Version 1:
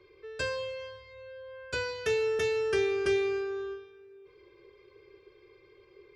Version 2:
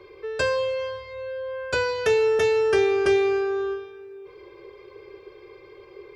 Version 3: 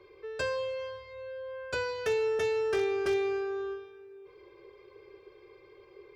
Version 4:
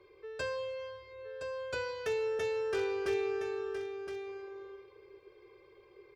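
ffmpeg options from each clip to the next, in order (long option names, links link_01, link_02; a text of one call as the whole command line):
ffmpeg -i in.wav -filter_complex "[0:a]equalizer=frequency=750:width_type=o:width=1.4:gain=8.5,asplit=2[link_01][link_02];[link_02]acompressor=threshold=-35dB:ratio=6,volume=0dB[link_03];[link_01][link_03]amix=inputs=2:normalize=0,volume=2.5dB" out.wav
ffmpeg -i in.wav -af "aeval=exprs='0.211*(abs(mod(val(0)/0.211+3,4)-2)-1)':channel_layout=same,volume=-8.5dB" out.wav
ffmpeg -i in.wav -af "aecho=1:1:1017:0.398,volume=-4.5dB" out.wav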